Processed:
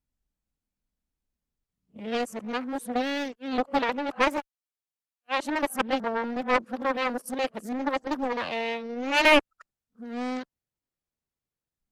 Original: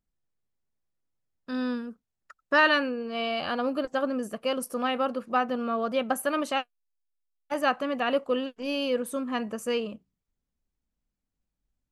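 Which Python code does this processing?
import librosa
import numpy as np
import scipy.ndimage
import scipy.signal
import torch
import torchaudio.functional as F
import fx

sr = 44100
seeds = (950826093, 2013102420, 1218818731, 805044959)

y = np.flip(x).copy()
y = fx.cheby_harmonics(y, sr, harmonics=(7,), levels_db=(-25,), full_scale_db=-9.5)
y = fx.doppler_dist(y, sr, depth_ms=0.54)
y = y * 10.0 ** (2.5 / 20.0)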